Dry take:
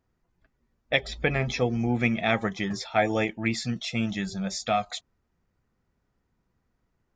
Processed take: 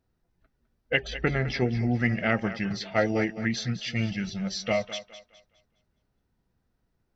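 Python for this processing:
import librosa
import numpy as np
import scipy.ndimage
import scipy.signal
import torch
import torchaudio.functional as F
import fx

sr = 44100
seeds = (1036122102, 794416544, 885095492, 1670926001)

p1 = fx.formant_shift(x, sr, semitones=-3)
p2 = fx.peak_eq(p1, sr, hz=1100.0, db=-6.0, octaves=0.5)
y = p2 + fx.echo_thinned(p2, sr, ms=207, feedback_pct=34, hz=280.0, wet_db=-13.0, dry=0)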